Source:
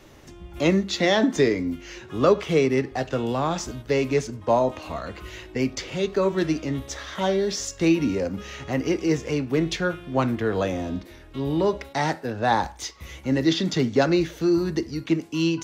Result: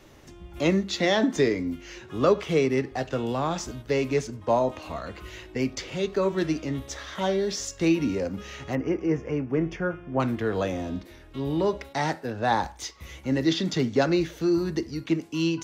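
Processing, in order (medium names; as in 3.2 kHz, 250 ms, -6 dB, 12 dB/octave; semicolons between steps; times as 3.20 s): 8.75–10.20 s: boxcar filter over 11 samples; trim -2.5 dB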